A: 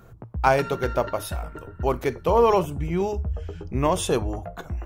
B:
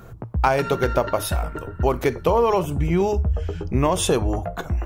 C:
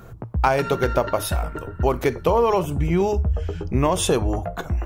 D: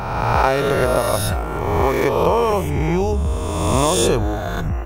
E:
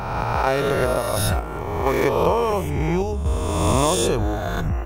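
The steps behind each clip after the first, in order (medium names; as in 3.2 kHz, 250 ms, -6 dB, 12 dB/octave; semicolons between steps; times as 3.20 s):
compression 6:1, threshold -22 dBFS, peak gain reduction 9 dB; trim +7 dB
no audible change
reverse spectral sustain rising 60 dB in 1.81 s; trim -1 dB
random-step tremolo 4.3 Hz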